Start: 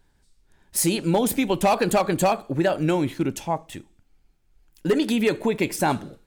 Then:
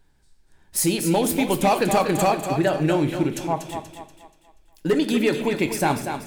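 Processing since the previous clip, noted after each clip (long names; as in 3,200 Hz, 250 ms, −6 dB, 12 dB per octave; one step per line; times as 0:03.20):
feedback echo with a high-pass in the loop 240 ms, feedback 41%, high-pass 250 Hz, level −7 dB
on a send at −10 dB: convolution reverb RT60 0.65 s, pre-delay 3 ms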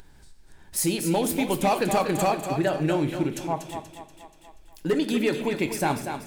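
upward compression, threshold −34 dBFS
level −3.5 dB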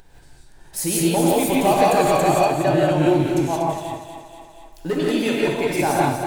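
parametric band 710 Hz +5 dB 0.76 octaves
reverb whose tail is shaped and stops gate 200 ms rising, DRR −4.5 dB
level −1 dB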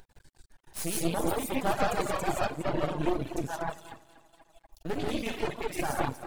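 half-wave rectification
reverb reduction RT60 1.8 s
level −5.5 dB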